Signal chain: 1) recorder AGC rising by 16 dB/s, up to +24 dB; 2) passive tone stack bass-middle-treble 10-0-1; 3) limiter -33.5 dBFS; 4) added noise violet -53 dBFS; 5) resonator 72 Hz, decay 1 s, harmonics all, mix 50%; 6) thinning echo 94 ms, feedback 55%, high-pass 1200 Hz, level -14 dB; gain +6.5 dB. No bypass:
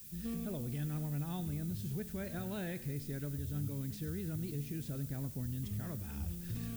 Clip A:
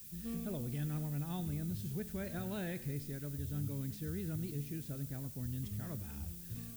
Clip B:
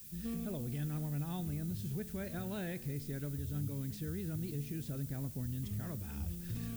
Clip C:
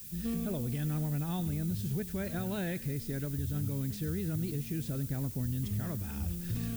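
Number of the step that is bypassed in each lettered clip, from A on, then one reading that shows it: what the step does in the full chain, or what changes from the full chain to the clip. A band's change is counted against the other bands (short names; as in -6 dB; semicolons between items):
1, momentary loudness spread change +1 LU; 6, echo-to-direct -15.5 dB to none; 5, loudness change +5.0 LU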